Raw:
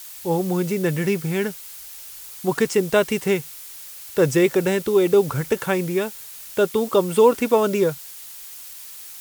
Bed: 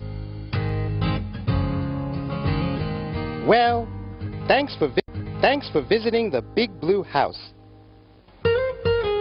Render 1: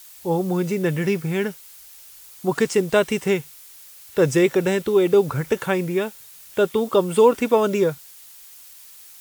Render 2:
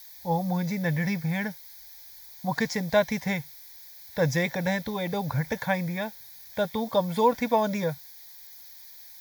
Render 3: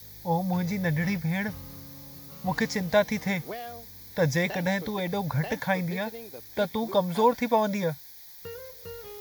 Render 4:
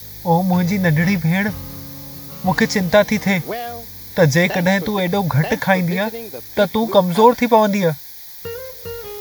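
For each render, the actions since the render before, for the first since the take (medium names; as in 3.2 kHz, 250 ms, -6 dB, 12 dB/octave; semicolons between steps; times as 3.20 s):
noise print and reduce 6 dB
static phaser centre 1.9 kHz, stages 8
add bed -21 dB
trim +11 dB; peak limiter -1 dBFS, peak gain reduction 2.5 dB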